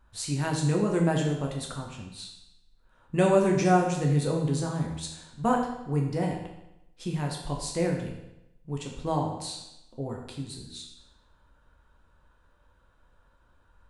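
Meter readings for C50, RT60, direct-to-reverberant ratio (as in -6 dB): 4.5 dB, 0.90 s, -0.5 dB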